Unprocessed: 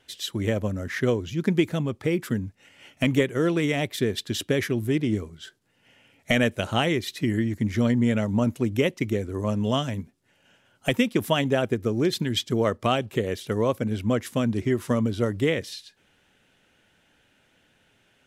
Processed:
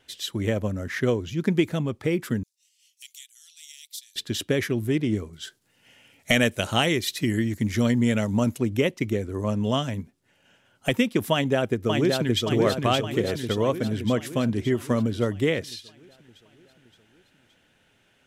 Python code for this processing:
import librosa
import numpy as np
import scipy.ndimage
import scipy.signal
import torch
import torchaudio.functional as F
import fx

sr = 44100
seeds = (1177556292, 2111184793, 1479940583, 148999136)

y = fx.cheby2_highpass(x, sr, hz=740.0, order=4, stop_db=80, at=(2.43, 4.16))
y = fx.high_shelf(y, sr, hz=3300.0, db=8.5, at=(5.33, 8.58))
y = fx.echo_throw(y, sr, start_s=11.32, length_s=1.13, ms=570, feedback_pct=60, wet_db=-3.5)